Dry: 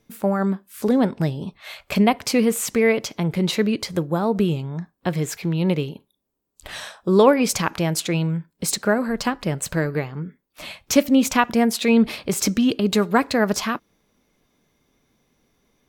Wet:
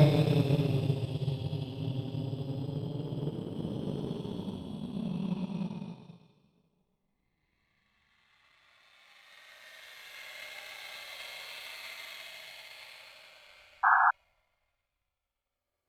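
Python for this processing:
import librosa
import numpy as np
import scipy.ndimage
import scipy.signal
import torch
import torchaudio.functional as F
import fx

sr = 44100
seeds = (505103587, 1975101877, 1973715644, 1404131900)

y = fx.paulstretch(x, sr, seeds[0], factor=26.0, window_s=0.05, from_s=1.27)
y = fx.power_curve(y, sr, exponent=1.4)
y = fx.spec_paint(y, sr, seeds[1], shape='noise', start_s=13.83, length_s=0.28, low_hz=710.0, high_hz=1700.0, level_db=-23.0)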